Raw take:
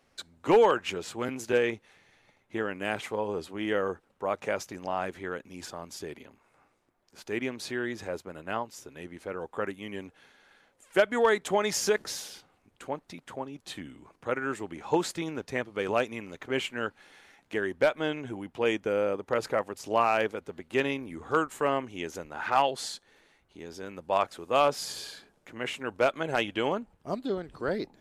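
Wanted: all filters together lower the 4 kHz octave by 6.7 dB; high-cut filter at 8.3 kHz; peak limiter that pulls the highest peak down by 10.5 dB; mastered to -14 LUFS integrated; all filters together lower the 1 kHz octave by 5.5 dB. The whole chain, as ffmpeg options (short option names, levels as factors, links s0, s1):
-af "lowpass=8300,equalizer=f=1000:t=o:g=-7,equalizer=f=4000:t=o:g=-9,volume=15,alimiter=limit=0.944:level=0:latency=1"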